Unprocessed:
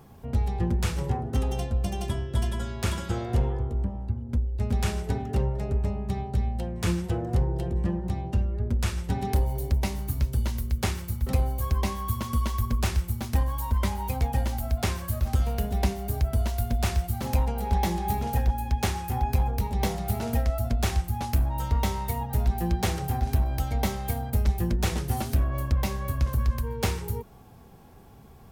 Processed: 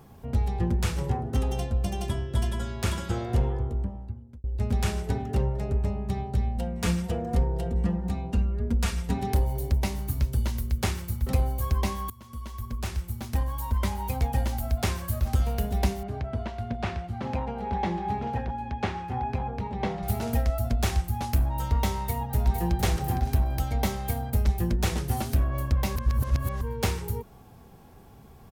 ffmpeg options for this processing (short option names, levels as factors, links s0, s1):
-filter_complex "[0:a]asettb=1/sr,asplit=3[s0][s1][s2];[s0]atrim=end=6.574[s3];[s1]atrim=start=6.57:end=9.19,asetpts=PTS-STARTPTS,afade=t=in:d=0.004:c=qsin,afade=t=out:st=2.616:d=0.004:c=qsin,aecho=1:1:4.3:0.65,atrim=end_sample=115542[s4];[s2]atrim=start=9.186[s5];[s3][s4]acrossfade=d=0.004:c1=hsin:c2=qsin[s6];[s6][s5]acrossfade=d=0.004:c1=qsin:c2=hsin,asettb=1/sr,asplit=3[s7][s8][s9];[s7]atrim=end=16.034[s10];[s8]atrim=start=16.03:end=20.03,asetpts=PTS-STARTPTS,afade=t=in:d=0.004:c=qsin,afade=t=out:st=3.996:d=0.004:c=qsin,highpass=110,lowpass=2700[s11];[s9]atrim=start=20.026[s12];[s10][s11]acrossfade=d=0.004:c1=hsin:c2=qsin[s13];[s13][s12]acrossfade=d=0.004:c1=qsin:c2=hsin,asplit=2[s14][s15];[s15]afade=t=in:st=21.99:d=0.01,afade=t=out:st=22.72:d=0.01,aecho=0:1:460|920|1380:0.446684|0.0670025|0.0100504[s16];[s14][s16]amix=inputs=2:normalize=0,asplit=5[s17][s18][s19][s20][s21];[s17]atrim=end=4.44,asetpts=PTS-STARTPTS,afade=t=out:st=3.69:d=0.75[s22];[s18]atrim=start=4.44:end=12.1,asetpts=PTS-STARTPTS,afade=t=in:d=0.004:c=hsin,afade=t=out:st=7.656:d=0.004:c=hsin:silence=0.0841395[s23];[s19]atrim=start=12.1:end=25.962,asetpts=PTS-STARTPTS,afade=t=in:d=2.55:c=qsin:silence=0.0841395[s24];[s20]atrim=start=25.958:end=26.612,asetpts=PTS-STARTPTS,areverse[s25];[s21]atrim=start=26.608[s26];[s22][s23][s24]concat=n=3:v=0:a=1[s27];[s27][s25]acrossfade=d=0.004:c1=hsin:c2=hsin[s28];[s28][s26]acrossfade=d=0.004:c1=hsin:c2=hsin"